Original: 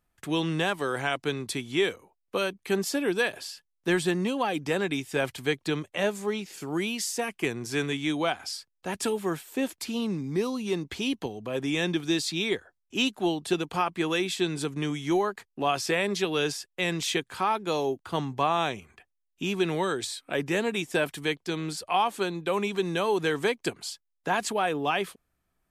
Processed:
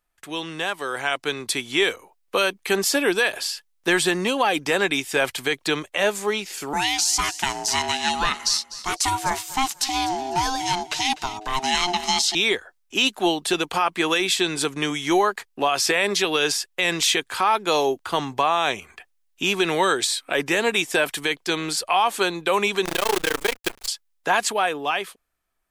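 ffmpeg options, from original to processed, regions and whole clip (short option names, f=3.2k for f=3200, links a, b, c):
-filter_complex "[0:a]asettb=1/sr,asplit=3[a][b][c];[a]atrim=end=6.734[d];[b]atrim=start=6.73:end=12.35,asetpts=PTS-STARTPTS,afade=t=in:d=0.004:c=qsin,afade=t=out:st=5.616:d=0.004:c=qsin,equalizer=f=5.8k:w=1.1:g=10,aeval=exprs='val(0)*sin(2*PI*530*n/s)':c=same,aecho=1:1:249|498:0.133|0.0347,atrim=end_sample=247842[e];[c]atrim=start=12.346[f];[d][e]acrossfade=d=0.004:c1=hsin:c2=qsin[g];[g][f]acrossfade=d=0.004:c1=qsin:c2=hsin,asettb=1/sr,asplit=3[h][i][j];[h]atrim=end=22.854[k];[i]atrim=start=22.85:end=23.88,asetpts=PTS-STARTPTS,afade=t=in:d=0.004:c=qsin,afade=t=out:st=1.026:d=0.004:c=qsin,tremolo=f=28:d=0.974,acrusher=bits=6:dc=4:mix=0:aa=0.000001[l];[j]atrim=start=23.876[m];[k][l]acrossfade=d=0.004:c1=hsin:c2=qsin[n];[n][m]acrossfade=d=0.004:c1=qsin:c2=hsin,equalizer=f=130:t=o:w=2.9:g=-13.5,dynaudnorm=f=130:g=21:m=10dB,alimiter=level_in=10.5dB:limit=-1dB:release=50:level=0:latency=1,volume=-8.5dB"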